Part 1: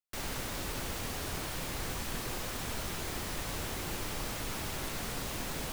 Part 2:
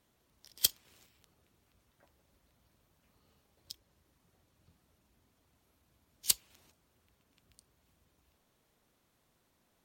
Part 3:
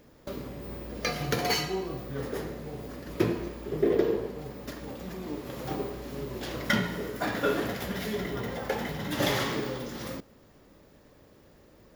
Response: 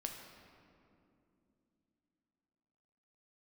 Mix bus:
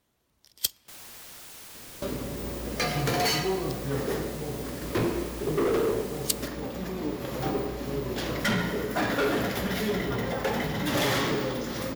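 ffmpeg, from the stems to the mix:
-filter_complex "[0:a]aeval=exprs='(mod(63.1*val(0)+1,2)-1)/63.1':channel_layout=same,adelay=750,volume=-4.5dB[link_01];[1:a]volume=0dB,asplit=2[link_02][link_03];[link_03]volume=-22.5dB[link_04];[2:a]asoftclip=type=hard:threshold=-27dB,adelay=1750,volume=2dB,asplit=2[link_05][link_06];[link_06]volume=-5.5dB[link_07];[3:a]atrim=start_sample=2205[link_08];[link_04][link_07]amix=inputs=2:normalize=0[link_09];[link_09][link_08]afir=irnorm=-1:irlink=0[link_10];[link_01][link_02][link_05][link_10]amix=inputs=4:normalize=0"

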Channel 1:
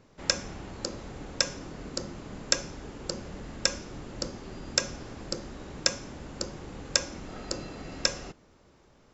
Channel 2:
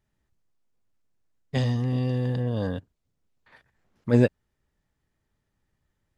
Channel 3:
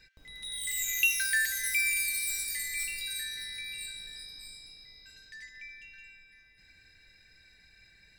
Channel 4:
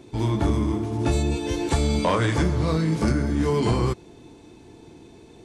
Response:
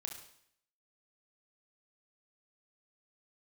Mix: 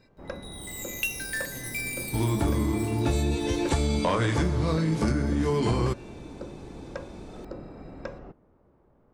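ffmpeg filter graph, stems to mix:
-filter_complex "[0:a]lowpass=1000,volume=-1.5dB[link_01];[1:a]acompressor=threshold=-28dB:ratio=6,volume=-13.5dB[link_02];[2:a]aeval=exprs='0.188*(cos(1*acos(clip(val(0)/0.188,-1,1)))-cos(1*PI/2))+0.0376*(cos(3*acos(clip(val(0)/0.188,-1,1)))-cos(3*PI/2))+0.00211*(cos(8*acos(clip(val(0)/0.188,-1,1)))-cos(8*PI/2))':channel_layout=same,volume=1dB[link_03];[3:a]adelay=2000,volume=1dB[link_04];[link_01][link_02][link_03][link_04]amix=inputs=4:normalize=0,acompressor=threshold=-24dB:ratio=2"

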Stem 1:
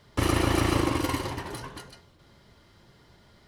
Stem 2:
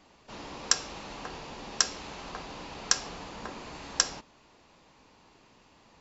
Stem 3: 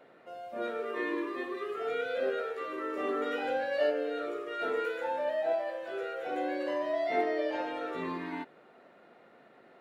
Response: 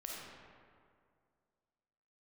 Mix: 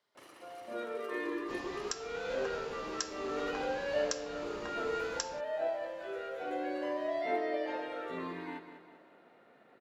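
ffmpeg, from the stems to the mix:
-filter_complex "[0:a]highpass=450,acompressor=threshold=-34dB:ratio=6,volume=-19.5dB[link_01];[1:a]adelay=1200,volume=-4.5dB[link_02];[2:a]adelay=150,volume=-4dB,asplit=2[link_03][link_04];[link_04]volume=-10.5dB,aecho=0:1:196|392|588|784|980|1176|1372:1|0.47|0.221|0.104|0.0488|0.0229|0.0108[link_05];[link_01][link_02][link_03][link_05]amix=inputs=4:normalize=0,alimiter=limit=-18.5dB:level=0:latency=1:release=397"

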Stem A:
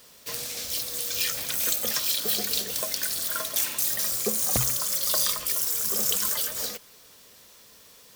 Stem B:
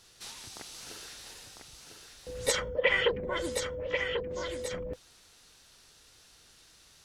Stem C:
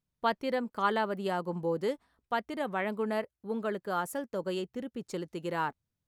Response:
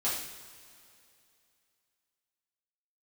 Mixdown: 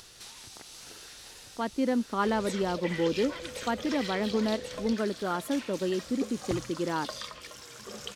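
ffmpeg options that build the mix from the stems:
-filter_complex "[0:a]lowpass=3600,adelay=1950,volume=-6.5dB[link_01];[1:a]acompressor=threshold=-47dB:ratio=2,volume=1dB[link_02];[2:a]dynaudnorm=framelen=250:gausssize=3:maxgain=6dB,equalizer=frequency=270:width_type=o:width=1:gain=12,adelay=1350,volume=-7.5dB[link_03];[link_01][link_02][link_03]amix=inputs=3:normalize=0,acompressor=mode=upward:threshold=-45dB:ratio=2.5"

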